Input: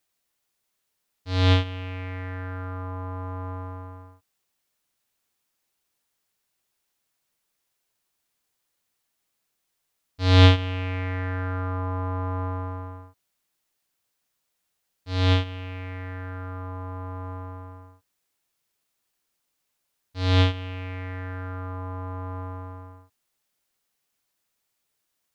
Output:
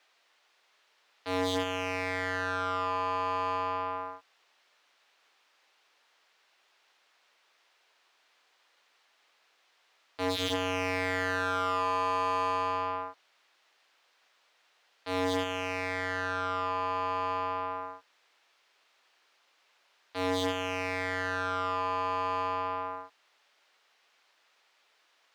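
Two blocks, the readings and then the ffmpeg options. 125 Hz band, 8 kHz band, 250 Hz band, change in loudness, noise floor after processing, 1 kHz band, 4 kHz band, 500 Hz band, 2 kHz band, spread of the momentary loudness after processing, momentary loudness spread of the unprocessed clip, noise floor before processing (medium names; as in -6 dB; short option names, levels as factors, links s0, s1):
-20.5 dB, no reading, -6.0 dB, -4.5 dB, -70 dBFS, +5.5 dB, -5.5 dB, +1.0 dB, +1.5 dB, 8 LU, 17 LU, -78 dBFS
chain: -filter_complex "[0:a]aeval=exprs='0.106*(abs(mod(val(0)/0.106+3,4)-2)-1)':c=same,acrossover=split=310 5500:gain=0.126 1 0.141[s0][s1][s2];[s0][s1][s2]amix=inputs=3:normalize=0,asplit=2[s3][s4];[s4]highpass=f=720:p=1,volume=15.8,asoftclip=type=tanh:threshold=0.1[s5];[s3][s5]amix=inputs=2:normalize=0,lowpass=f=3300:p=1,volume=0.501"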